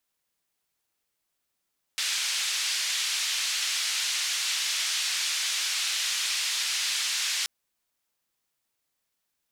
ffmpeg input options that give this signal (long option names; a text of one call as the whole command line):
ffmpeg -f lavfi -i "anoisesrc=color=white:duration=5.48:sample_rate=44100:seed=1,highpass=frequency=2300,lowpass=frequency=5600,volume=-15.7dB" out.wav